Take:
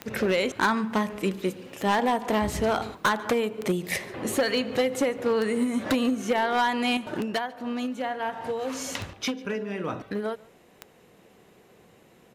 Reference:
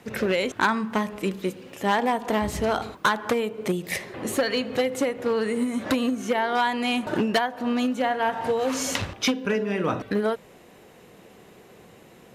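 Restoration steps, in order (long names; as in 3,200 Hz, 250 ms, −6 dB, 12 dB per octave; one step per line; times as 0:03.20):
clipped peaks rebuilt −17 dBFS
click removal
echo removal 144 ms −23.5 dB
level correction +6 dB, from 0:06.97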